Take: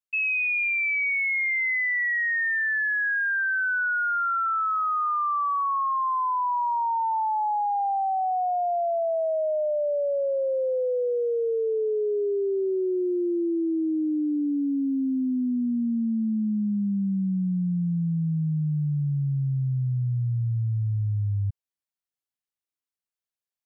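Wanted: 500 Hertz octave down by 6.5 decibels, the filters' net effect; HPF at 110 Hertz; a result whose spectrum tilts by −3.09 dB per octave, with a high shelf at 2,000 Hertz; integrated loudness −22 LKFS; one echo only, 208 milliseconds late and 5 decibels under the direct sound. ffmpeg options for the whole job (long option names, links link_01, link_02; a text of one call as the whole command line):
ffmpeg -i in.wav -af "highpass=110,equalizer=frequency=500:width_type=o:gain=-8,highshelf=frequency=2000:gain=-6.5,aecho=1:1:208:0.562,volume=5dB" out.wav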